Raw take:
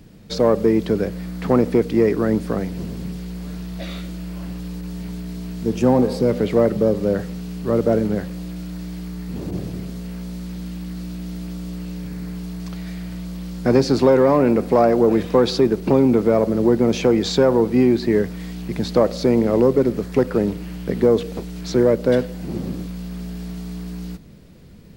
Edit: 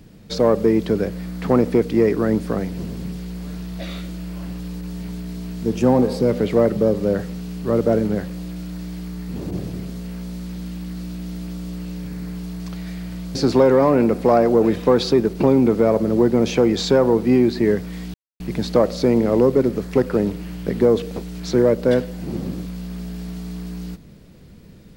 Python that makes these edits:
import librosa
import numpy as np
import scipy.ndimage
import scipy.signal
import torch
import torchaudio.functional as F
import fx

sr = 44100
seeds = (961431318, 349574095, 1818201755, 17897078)

y = fx.edit(x, sr, fx.cut(start_s=13.35, length_s=0.47),
    fx.insert_silence(at_s=18.61, length_s=0.26), tone=tone)